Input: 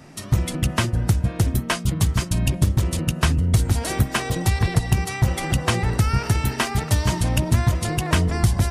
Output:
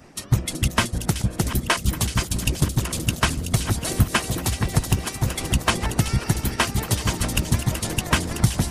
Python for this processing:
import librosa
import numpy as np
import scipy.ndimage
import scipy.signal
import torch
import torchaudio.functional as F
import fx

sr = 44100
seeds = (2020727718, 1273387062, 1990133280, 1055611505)

y = fx.reverse_delay_fb(x, sr, ms=577, feedback_pct=69, wet_db=-11.5)
y = fx.hpss(y, sr, part='harmonic', gain_db=-16)
y = fx.echo_wet_highpass(y, sr, ms=377, feedback_pct=32, hz=3800.0, wet_db=-6.0)
y = y * 10.0 ** (3.0 / 20.0)